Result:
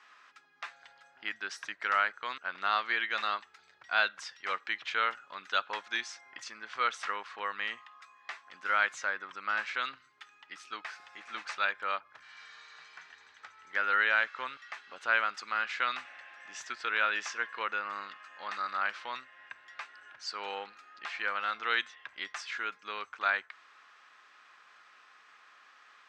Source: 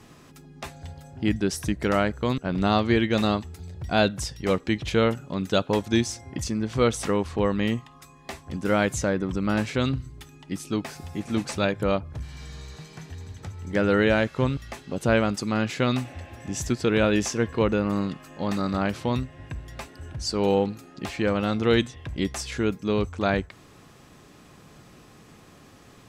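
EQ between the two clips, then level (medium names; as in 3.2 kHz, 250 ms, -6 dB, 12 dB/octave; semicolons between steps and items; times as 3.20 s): resonant high-pass 1.4 kHz, resonance Q 2.1; distance through air 150 m; -3.0 dB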